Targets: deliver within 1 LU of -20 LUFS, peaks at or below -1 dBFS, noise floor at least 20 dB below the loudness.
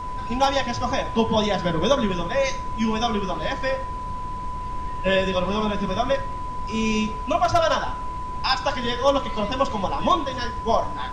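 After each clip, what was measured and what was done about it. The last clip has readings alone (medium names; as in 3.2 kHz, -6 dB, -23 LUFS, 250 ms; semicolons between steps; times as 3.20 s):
steady tone 1 kHz; tone level -30 dBFS; noise floor -31 dBFS; noise floor target -44 dBFS; loudness -24.0 LUFS; peak level -6.0 dBFS; loudness target -20.0 LUFS
-> band-stop 1 kHz, Q 30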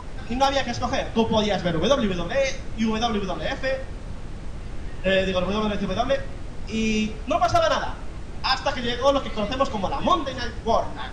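steady tone not found; noise floor -35 dBFS; noise floor target -44 dBFS
-> noise print and reduce 9 dB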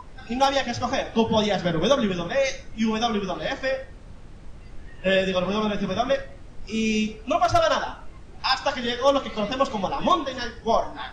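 noise floor -44 dBFS; loudness -24.0 LUFS; peak level -6.5 dBFS; loudness target -20.0 LUFS
-> trim +4 dB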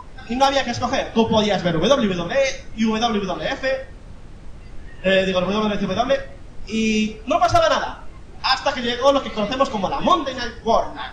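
loudness -20.0 LUFS; peak level -2.5 dBFS; noise floor -40 dBFS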